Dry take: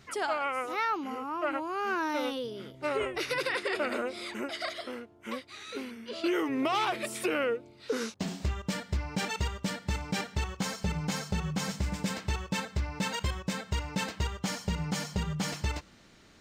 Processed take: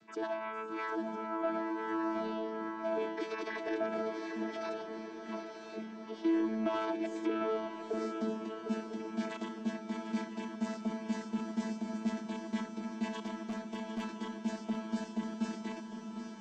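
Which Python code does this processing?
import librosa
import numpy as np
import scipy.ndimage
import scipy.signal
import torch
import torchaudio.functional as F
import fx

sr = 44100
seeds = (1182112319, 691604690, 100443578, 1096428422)

p1 = fx.chord_vocoder(x, sr, chord='bare fifth', root=57)
p2 = 10.0 ** (-29.0 / 20.0) * np.tanh(p1 / 10.0 ** (-29.0 / 20.0))
p3 = p1 + F.gain(torch.from_numpy(p2), -3.0).numpy()
p4 = fx.echo_diffused(p3, sr, ms=814, feedback_pct=45, wet_db=-7.5)
p5 = fx.clip_hard(p4, sr, threshold_db=-26.5, at=(13.14, 14.03))
p6 = fx.echo_swing(p5, sr, ms=1003, ratio=3, feedback_pct=47, wet_db=-11)
y = F.gain(torch.from_numpy(p6), -6.5).numpy()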